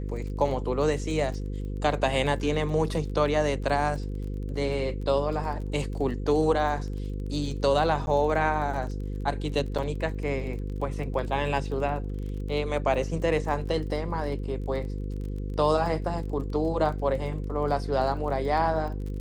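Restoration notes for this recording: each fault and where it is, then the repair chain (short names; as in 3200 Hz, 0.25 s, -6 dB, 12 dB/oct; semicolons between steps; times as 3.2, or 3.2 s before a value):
buzz 50 Hz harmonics 10 -32 dBFS
crackle 25/s -36 dBFS
8.06–8.07 gap 11 ms
9.78–9.79 gap 5.8 ms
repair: de-click; de-hum 50 Hz, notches 10; interpolate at 8.06, 11 ms; interpolate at 9.78, 5.8 ms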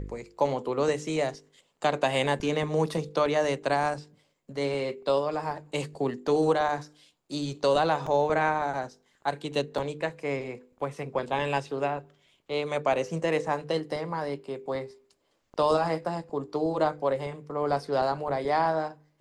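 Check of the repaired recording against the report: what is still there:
none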